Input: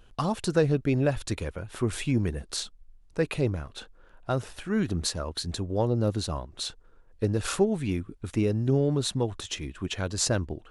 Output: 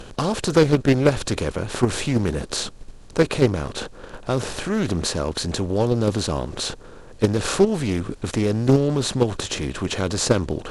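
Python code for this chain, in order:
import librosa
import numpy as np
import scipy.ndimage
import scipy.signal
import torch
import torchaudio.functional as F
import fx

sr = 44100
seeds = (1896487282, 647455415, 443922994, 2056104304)

p1 = fx.bin_compress(x, sr, power=0.6)
p2 = fx.level_steps(p1, sr, step_db=20)
p3 = p1 + F.gain(torch.from_numpy(p2), 2.0).numpy()
y = fx.doppler_dist(p3, sr, depth_ms=0.29)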